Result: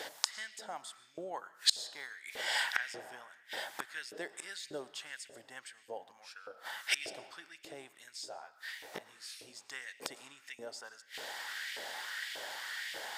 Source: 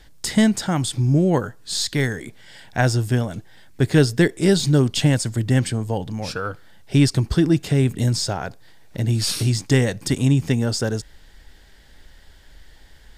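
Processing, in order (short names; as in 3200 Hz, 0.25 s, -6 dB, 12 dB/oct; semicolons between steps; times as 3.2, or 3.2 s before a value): flipped gate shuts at -23 dBFS, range -32 dB; digital reverb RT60 2.2 s, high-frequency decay 0.45×, pre-delay 70 ms, DRR 13 dB; LFO high-pass saw up 1.7 Hz 480–2500 Hz; 8.25–9.55 detuned doubles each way 30 cents -> 46 cents; gain +11 dB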